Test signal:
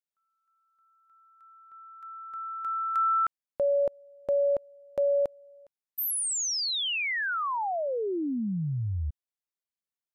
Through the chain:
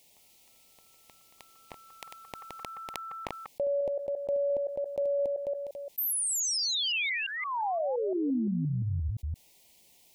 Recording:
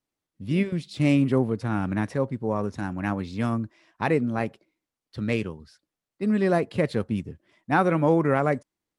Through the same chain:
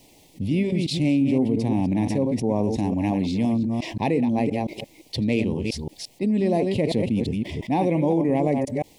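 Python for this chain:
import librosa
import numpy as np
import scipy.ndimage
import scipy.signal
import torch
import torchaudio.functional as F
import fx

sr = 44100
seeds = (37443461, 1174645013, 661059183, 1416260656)

y = fx.reverse_delay(x, sr, ms=173, wet_db=-8.5)
y = fx.dynamic_eq(y, sr, hz=260.0, q=2.6, threshold_db=-39.0, ratio=4.0, max_db=7)
y = scipy.signal.sosfilt(scipy.signal.cheby1(2, 1.0, [840.0, 2300.0], 'bandstop', fs=sr, output='sos'), y)
y = fx.env_flatten(y, sr, amount_pct=70)
y = y * librosa.db_to_amplitude(-6.0)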